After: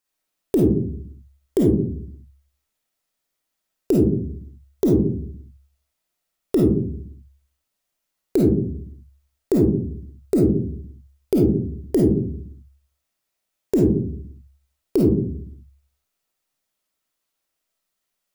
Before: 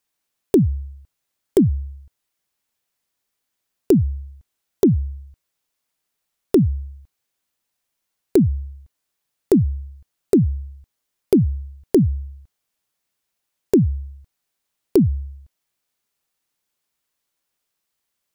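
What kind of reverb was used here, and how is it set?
algorithmic reverb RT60 0.55 s, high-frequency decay 0.3×, pre-delay 10 ms, DRR -3 dB; trim -5 dB

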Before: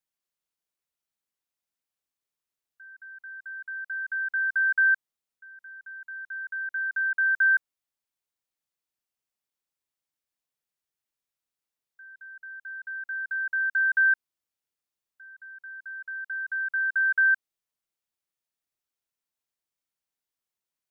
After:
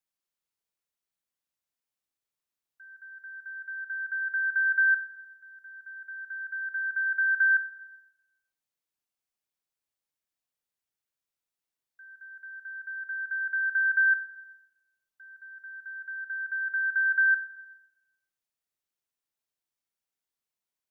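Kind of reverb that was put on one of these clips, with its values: Schroeder reverb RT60 0.92 s, DRR 10.5 dB; trim -2 dB

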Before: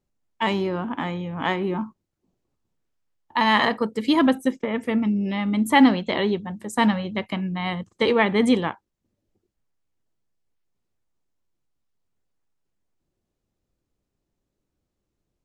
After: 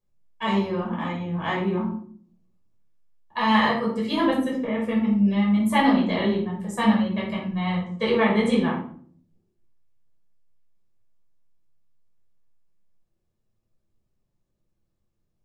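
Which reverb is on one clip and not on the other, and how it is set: simulated room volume 590 m³, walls furnished, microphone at 5.6 m; trim -10 dB

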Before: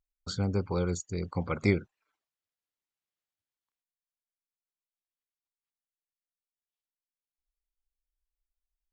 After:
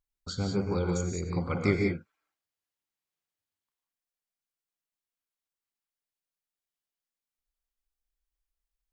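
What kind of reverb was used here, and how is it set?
gated-style reverb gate 210 ms rising, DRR 1.5 dB; trim -1 dB

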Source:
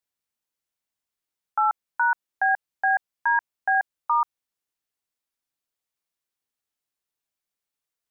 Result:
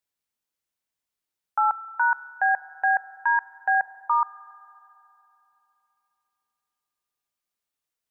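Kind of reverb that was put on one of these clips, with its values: spring tank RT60 3.2 s, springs 33/45 ms, chirp 35 ms, DRR 18 dB

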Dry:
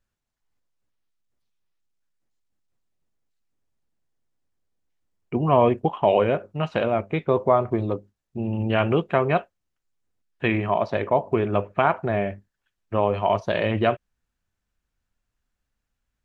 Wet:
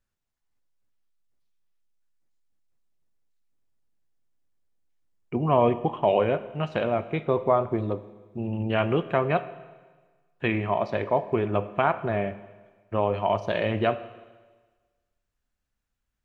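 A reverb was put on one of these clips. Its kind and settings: Schroeder reverb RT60 1.4 s, combs from 26 ms, DRR 14 dB; trim -3 dB

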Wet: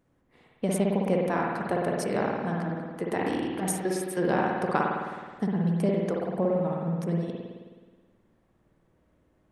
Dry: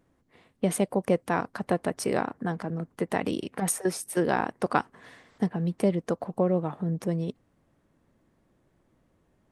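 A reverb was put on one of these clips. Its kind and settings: spring tank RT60 1.5 s, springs 53 ms, chirp 45 ms, DRR -2 dB; trim -3.5 dB

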